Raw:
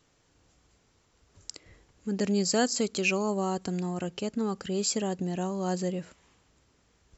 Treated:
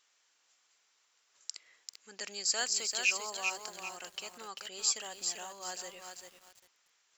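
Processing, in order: Bessel high-pass 1600 Hz, order 2; vibrato 11 Hz 7.2 cents; lo-fi delay 0.392 s, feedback 35%, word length 9-bit, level -5 dB

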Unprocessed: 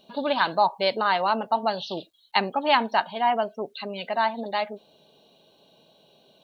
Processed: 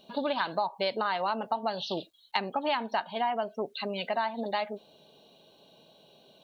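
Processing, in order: compressor 6:1, threshold -26 dBFS, peak gain reduction 11 dB

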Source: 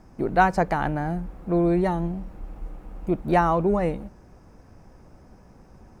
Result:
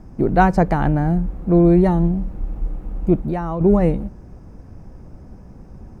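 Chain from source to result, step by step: low shelf 440 Hz +12 dB; 3.17–3.61 compressor 4:1, threshold -22 dBFS, peak gain reduction 11.5 dB

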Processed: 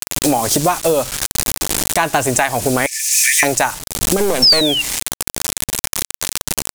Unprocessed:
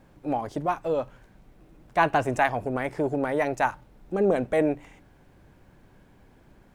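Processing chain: 4.17–4.61 half-wave gain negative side -12 dB; bit-crush 8-bit; 2.86–3.43 rippled Chebyshev high-pass 1700 Hz, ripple 9 dB; 4.42–4.82 painted sound fall 2700–5500 Hz -35 dBFS; bell 8600 Hz +12 dB 2 oct; compressor 12:1, threshold -42 dBFS, peak gain reduction 26.5 dB; high shelf 3300 Hz +9 dB; maximiser +30 dB; gain -1 dB

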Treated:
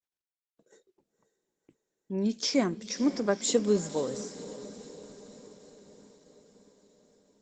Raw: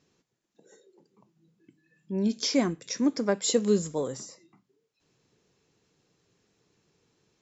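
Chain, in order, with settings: gate -57 dBFS, range -32 dB; low shelf 100 Hz -11 dB; diffused feedback echo 0.523 s, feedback 60%, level -14 dB; Opus 16 kbps 48000 Hz

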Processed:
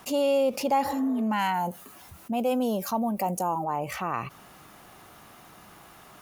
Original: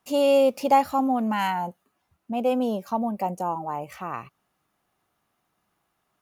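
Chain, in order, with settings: 0.88–1.19 spectral repair 300–2100 Hz both; 1.54–3.64 high shelf 6000 Hz +11 dB; fast leveller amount 50%; gain -6.5 dB

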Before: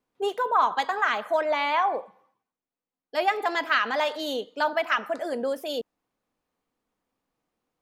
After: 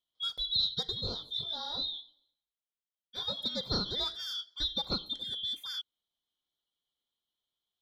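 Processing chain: four-band scrambler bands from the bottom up 2413; 1.01–3.39 detuned doubles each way 26 cents; gain -8.5 dB

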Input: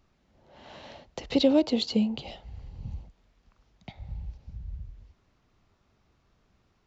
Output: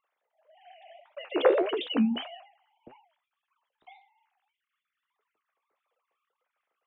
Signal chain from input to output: sine-wave speech; flange 1.7 Hz, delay 6.7 ms, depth 9.6 ms, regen +53%; sustainer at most 110 dB/s; gain +2.5 dB

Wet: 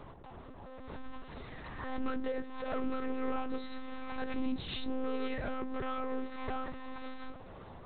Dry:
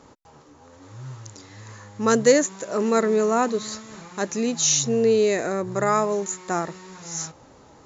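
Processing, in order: dynamic EQ 570 Hz, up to -5 dB, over -37 dBFS, Q 3; compressor 16:1, threshold -30 dBFS, peak gain reduction 18 dB; hard clip -32 dBFS, distortion -11 dB; on a send at -8 dB: air absorption 140 m + reverb RT60 0.50 s, pre-delay 4 ms; on the sum: monotone LPC vocoder at 8 kHz 260 Hz; backwards sustainer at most 45 dB/s

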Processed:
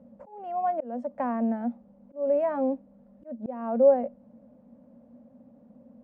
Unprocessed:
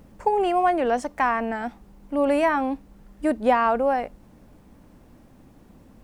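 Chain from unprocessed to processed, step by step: double band-pass 360 Hz, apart 1.2 oct; auto swell 0.374 s; gain +6 dB

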